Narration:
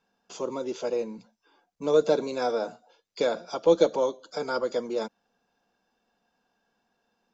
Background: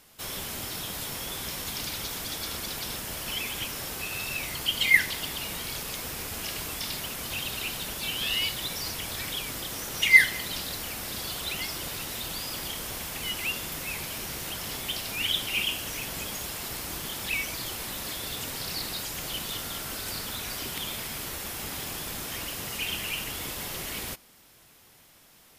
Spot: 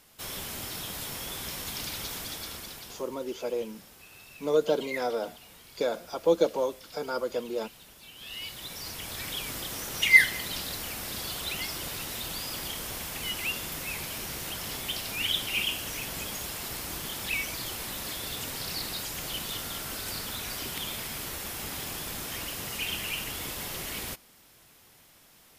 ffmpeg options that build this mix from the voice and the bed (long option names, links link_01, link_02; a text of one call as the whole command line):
ffmpeg -i stem1.wav -i stem2.wav -filter_complex "[0:a]adelay=2600,volume=-3dB[link_01];[1:a]volume=14.5dB,afade=type=out:start_time=2.15:duration=0.95:silence=0.16788,afade=type=in:start_time=8.14:duration=1.36:silence=0.149624[link_02];[link_01][link_02]amix=inputs=2:normalize=0" out.wav